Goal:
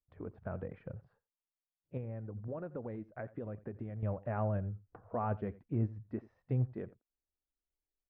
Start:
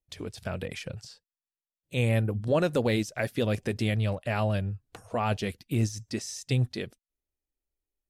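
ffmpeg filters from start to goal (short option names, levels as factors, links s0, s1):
-filter_complex "[0:a]lowpass=f=1400:w=0.5412,lowpass=f=1400:w=1.3066,asettb=1/sr,asplit=3[s0][s1][s2];[s0]atrim=end=1.974[s3];[s1]atrim=start=1.97:end=4.03,asetpts=PTS-STARTPTS,afade=t=in:d=0.004:c=qsin,afade=t=out:st=2.056:d=0.004:c=qsin,acompressor=threshold=0.0224:ratio=5[s4];[s2]atrim=start=4.026[s5];[s3][s4]acrossfade=d=0.004:c1=hsin:c2=qsin[s6];[s6][s5]acrossfade=d=0.004:c1=qsin:c2=hsin,aecho=1:1:86:0.1,volume=0.473"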